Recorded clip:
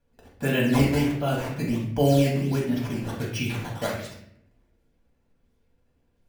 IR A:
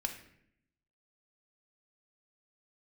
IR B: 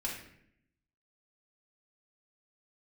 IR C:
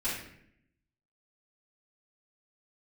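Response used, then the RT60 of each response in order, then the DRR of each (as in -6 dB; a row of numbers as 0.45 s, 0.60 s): B; 0.70 s, 0.70 s, 0.70 s; 3.5 dB, -4.0 dB, -12.5 dB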